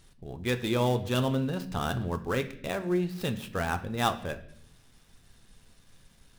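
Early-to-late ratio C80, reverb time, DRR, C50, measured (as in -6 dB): 16.5 dB, 0.70 s, 8.0 dB, 13.5 dB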